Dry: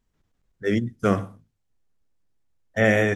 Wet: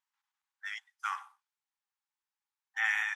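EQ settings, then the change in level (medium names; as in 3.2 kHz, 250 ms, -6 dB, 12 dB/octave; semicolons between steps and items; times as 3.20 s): brick-wall FIR high-pass 770 Hz; treble shelf 6.8 kHz -6 dB; -5.0 dB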